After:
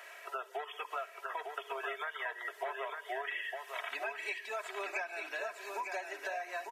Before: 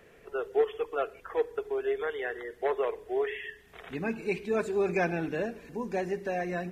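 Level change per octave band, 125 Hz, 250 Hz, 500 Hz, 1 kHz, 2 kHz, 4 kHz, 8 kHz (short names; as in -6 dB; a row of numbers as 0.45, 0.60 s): under -40 dB, -23.5 dB, -13.5 dB, -2.0 dB, -0.5 dB, +2.5 dB, n/a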